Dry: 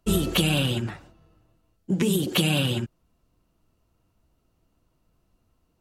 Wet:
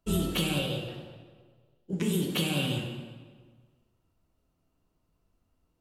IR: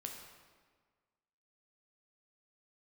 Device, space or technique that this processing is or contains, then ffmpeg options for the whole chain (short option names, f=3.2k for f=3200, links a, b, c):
stairwell: -filter_complex "[0:a]asettb=1/sr,asplit=3[a][b][c];[a]atrim=end=0.594[d];[b]atrim=start=0.59:end=1.93,asetpts=PTS-STARTPTS,afade=t=in:d=0.004:c=qsin,afade=t=out:st=1.336:d=0.004:c=qsin,equalizer=f=125:t=o:w=1:g=-4,equalizer=f=250:t=o:w=1:g=-10,equalizer=f=500:t=o:w=1:g=10,equalizer=f=1k:t=o:w=1:g=-9,equalizer=f=2k:t=o:w=1:g=-9,equalizer=f=4k:t=o:w=1:g=5,equalizer=f=8k:t=o:w=1:g=-10[e];[c]atrim=start=1.926[f];[d][e]acrossfade=d=0.004:c1=hsin:c2=qsin[g];[g][f]acrossfade=d=0.004:c1=qsin:c2=hsin[h];[1:a]atrim=start_sample=2205[i];[h][i]afir=irnorm=-1:irlink=0,volume=-3dB"